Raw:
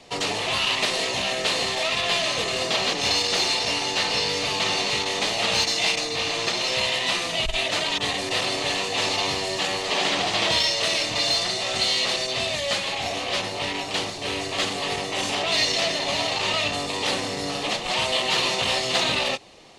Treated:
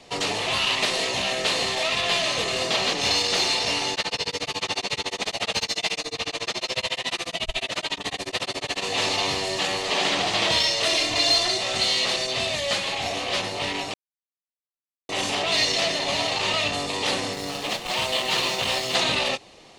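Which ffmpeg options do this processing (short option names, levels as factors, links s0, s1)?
-filter_complex "[0:a]asplit=3[s0][s1][s2];[s0]afade=t=out:st=3.94:d=0.02[s3];[s1]tremolo=f=14:d=1,afade=t=in:st=3.94:d=0.02,afade=t=out:st=8.81:d=0.02[s4];[s2]afade=t=in:st=8.81:d=0.02[s5];[s3][s4][s5]amix=inputs=3:normalize=0,asettb=1/sr,asplit=3[s6][s7][s8];[s6]atrim=end=10.854[s9];[s7]atrim=start=10.85:end=11.58,asetpts=PTS-STARTPTS,afade=t=in:d=0.004:c=qsin,afade=t=out:st=0.726:d=0.004:c=qsin,aecho=1:1:2.9:0.65,atrim=end_sample=32193[s10];[s8]atrim=start=11.576[s11];[s9][s10]acrossfade=d=0.004:c1=hsin:c2=qsin[s12];[s12][s11]acrossfade=d=0.004:c1=qsin:c2=hsin,asettb=1/sr,asplit=3[s13][s14][s15];[s13]atrim=end=17.334[s16];[s14]atrim=start=17.33:end=18.95,asetpts=PTS-STARTPTS,afade=t=in:d=0.004:c=qsin,afade=t=out:st=1.616:d=0.004:c=qsin,aeval=exprs='sgn(val(0))*max(abs(val(0))-0.0133,0)':c=same[s17];[s15]atrim=start=18.946[s18];[s16][s17]acrossfade=d=0.004:c1=hsin:c2=qsin[s19];[s19][s18]acrossfade=d=0.004:c1=qsin:c2=hsin,asplit=3[s20][s21][s22];[s20]atrim=end=13.94,asetpts=PTS-STARTPTS,afade=t=out:st=13.936:d=0.004:c=hsin[s23];[s21]atrim=start=13.94:end=15.09,asetpts=PTS-STARTPTS,volume=0[s24];[s22]atrim=start=15.09,asetpts=PTS-STARTPTS,afade=t=in:d=0.004:c=hsin[s25];[s23][s24][s25]concat=n=3:v=0:a=1"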